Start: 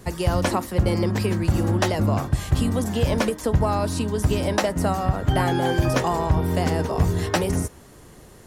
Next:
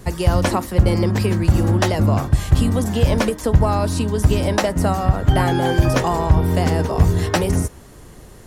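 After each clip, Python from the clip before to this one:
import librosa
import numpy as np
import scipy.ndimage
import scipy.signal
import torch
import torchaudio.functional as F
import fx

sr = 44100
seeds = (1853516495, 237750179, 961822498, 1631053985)

y = fx.low_shelf(x, sr, hz=69.0, db=8.0)
y = F.gain(torch.from_numpy(y), 3.0).numpy()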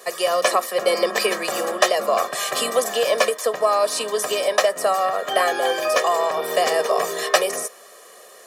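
y = scipy.signal.sosfilt(scipy.signal.bessel(6, 520.0, 'highpass', norm='mag', fs=sr, output='sos'), x)
y = y + 0.83 * np.pad(y, (int(1.7 * sr / 1000.0), 0))[:len(y)]
y = fx.rider(y, sr, range_db=4, speed_s=0.5)
y = F.gain(torch.from_numpy(y), 2.5).numpy()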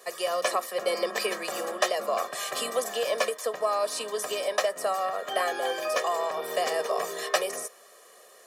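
y = fx.low_shelf(x, sr, hz=69.0, db=-11.0)
y = F.gain(torch.from_numpy(y), -8.0).numpy()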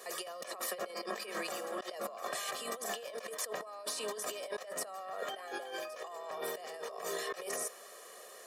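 y = fx.over_compress(x, sr, threshold_db=-37.0, ratio=-1.0)
y = F.gain(torch.from_numpy(y), -5.0).numpy()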